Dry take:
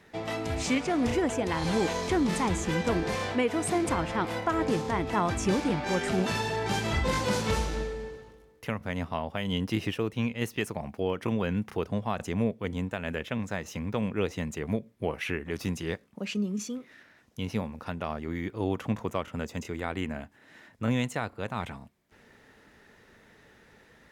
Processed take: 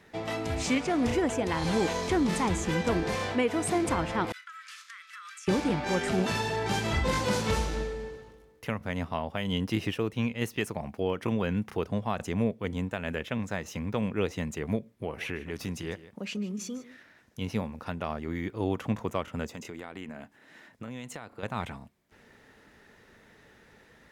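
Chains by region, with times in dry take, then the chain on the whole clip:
0:04.32–0:05.48: downward expander −28 dBFS + Butterworth high-pass 1,200 Hz 96 dB per octave + downward compressor 16 to 1, threshold −41 dBFS
0:14.92–0:17.41: downward compressor 1.5 to 1, threshold −35 dBFS + single-tap delay 151 ms −16 dB
0:19.51–0:21.43: parametric band 74 Hz −12 dB 0.82 octaves + downward compressor, threshold −36 dBFS
whole clip: no processing

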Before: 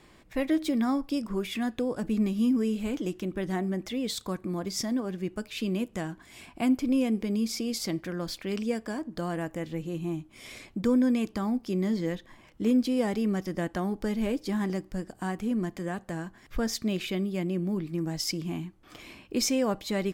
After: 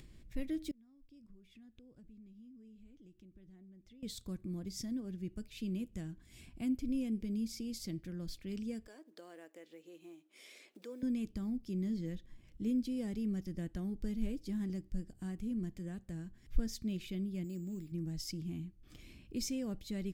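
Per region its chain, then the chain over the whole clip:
0:00.71–0:04.03: gate with flip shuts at −31 dBFS, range −24 dB + high-shelf EQ 8,200 Hz −12 dB + downward compressor 1.5 to 1, threshold −58 dBFS
0:08.87–0:11.03: one scale factor per block 7 bits + high-pass filter 420 Hz 24 dB per octave + high-shelf EQ 3,700 Hz −7 dB
0:17.44–0:17.92: low-shelf EQ 190 Hz −9 dB + bad sample-rate conversion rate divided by 6×, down none, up hold
whole clip: guitar amp tone stack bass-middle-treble 10-0-1; upward compression, threshold −57 dBFS; level +8.5 dB

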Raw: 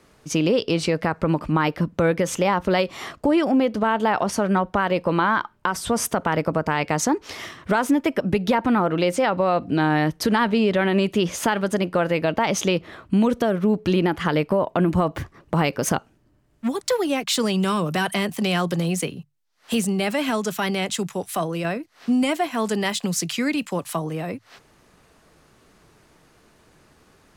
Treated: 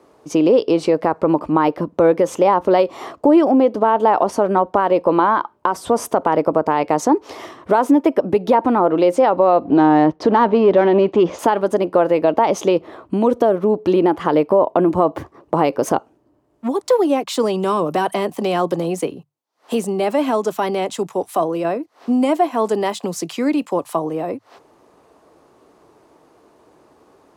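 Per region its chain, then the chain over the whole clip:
0:09.65–0:11.39: leveller curve on the samples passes 1 + high-frequency loss of the air 150 metres
whole clip: high-pass filter 61 Hz; flat-topped bell 550 Hz +12 dB 2.4 octaves; level −4.5 dB

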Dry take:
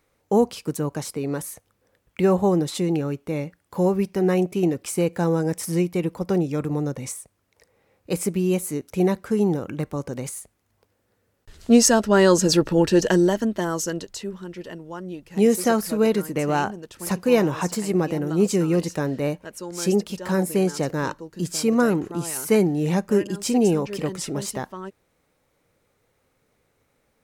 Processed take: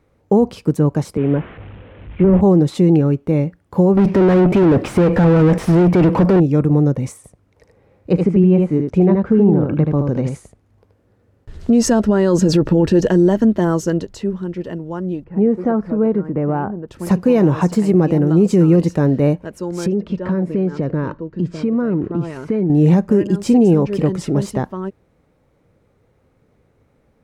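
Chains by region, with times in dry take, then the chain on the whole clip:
0:01.17–0:02.41: linear delta modulator 16 kbit/s, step −34 dBFS + multiband upward and downward expander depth 70%
0:03.97–0:06.40: bass and treble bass +5 dB, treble −2 dB + downward compressor, threshold −21 dBFS + mid-hump overdrive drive 35 dB, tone 2,000 Hz, clips at −15.5 dBFS
0:07.16–0:11.73: treble cut that deepens with the level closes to 2,400 Hz, closed at −22 dBFS + single-tap delay 78 ms −5 dB
0:15.24–0:16.88: Chebyshev low-pass filter 1,300 Hz + downward compressor 1.5 to 1, threshold −33 dBFS
0:19.86–0:22.70: low-pass filter 2,900 Hz + downward compressor 5 to 1, threshold −26 dBFS + notch filter 800 Hz, Q 6
whole clip: high-pass filter 100 Hz 6 dB per octave; spectral tilt −3.5 dB per octave; brickwall limiter −10 dBFS; level +5 dB

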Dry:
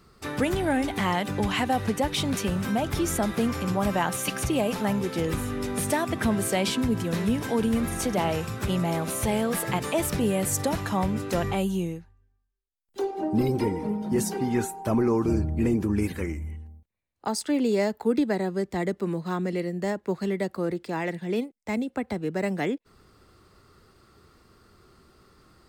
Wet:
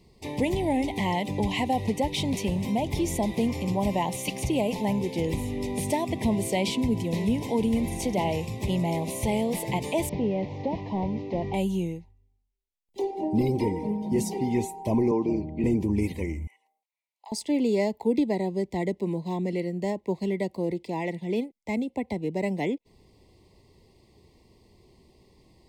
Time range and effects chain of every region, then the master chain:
0:10.09–0:11.54: linear delta modulator 32 kbit/s, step −40.5 dBFS + low-pass filter 1,500 Hz 6 dB per octave + low-shelf EQ 110 Hz −8.5 dB
0:15.11–0:15.64: Butterworth band-reject 1,700 Hz, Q 7.4 + three-way crossover with the lows and the highs turned down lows −15 dB, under 170 Hz, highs −23 dB, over 4,900 Hz
0:16.47–0:17.32: high-pass filter 780 Hz 24 dB per octave + downward compressor 3 to 1, threshold −42 dBFS
whole clip: Chebyshev band-stop filter 1,000–2,000 Hz, order 3; high-shelf EQ 7,100 Hz −7 dB

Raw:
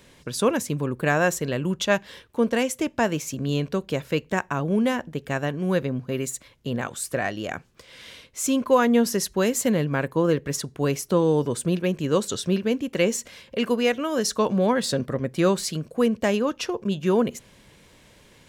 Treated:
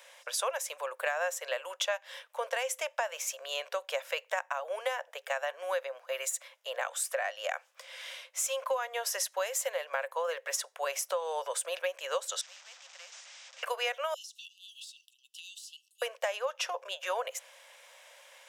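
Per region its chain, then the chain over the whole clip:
0:12.41–0:13.63: linear delta modulator 32 kbit/s, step −29.5 dBFS + first difference + every bin compressed towards the loudest bin 2 to 1
0:14.14–0:16.02: linear-phase brick-wall high-pass 2,600 Hz + downward compressor 8 to 1, threshold −38 dBFS + high-shelf EQ 3,600 Hz −7.5 dB
whole clip: Chebyshev high-pass filter 530 Hz, order 6; parametric band 4,300 Hz −6.5 dB 0.21 octaves; downward compressor 10 to 1, threshold −30 dBFS; level +1.5 dB

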